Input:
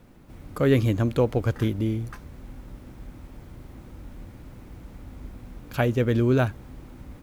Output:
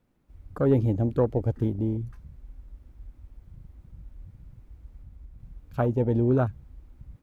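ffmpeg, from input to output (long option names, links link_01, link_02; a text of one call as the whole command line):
ffmpeg -i in.wav -filter_complex "[0:a]afwtdn=0.0447,asettb=1/sr,asplit=3[link_01][link_02][link_03];[link_01]atrim=end=5.004[link_04];[link_02]atrim=start=5:end=5.4,asetpts=PTS-STARTPTS,afade=type=in:duration=0.004:curve=qsin,afade=type=out:start_time=0.396:duration=0.004:curve=qsin,acompressor=threshold=-41dB:ratio=2.5[link_05];[link_03]atrim=start=5.396[link_06];[link_04][link_05]acrossfade=duration=0.004:curve1=hsin:curve2=qsin[link_07];[link_07][link_06]acrossfade=duration=0.004:curve1=qsin:curve2=hsin,volume=-1.5dB" out.wav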